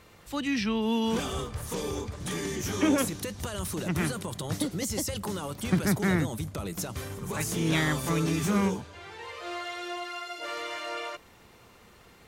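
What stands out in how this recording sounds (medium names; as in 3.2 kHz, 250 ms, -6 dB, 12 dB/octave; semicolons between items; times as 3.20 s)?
noise floor -55 dBFS; spectral tilt -4.5 dB/octave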